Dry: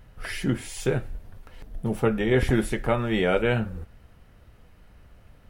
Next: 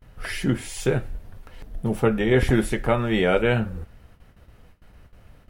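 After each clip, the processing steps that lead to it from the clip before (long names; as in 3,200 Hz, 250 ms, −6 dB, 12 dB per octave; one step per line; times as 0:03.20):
noise gate with hold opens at −43 dBFS
level +2.5 dB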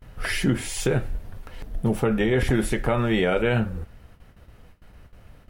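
in parallel at +2.5 dB: speech leveller within 3 dB
on the sum: brickwall limiter −7.5 dBFS, peak gain reduction 7 dB
level −5 dB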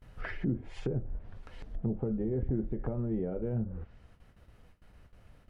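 treble cut that deepens with the level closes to 390 Hz, closed at −19.5 dBFS
level −8.5 dB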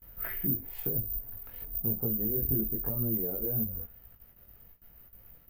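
bad sample-rate conversion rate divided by 3×, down none, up zero stuff
multi-voice chorus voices 2, 0.97 Hz, delay 20 ms, depth 3.1 ms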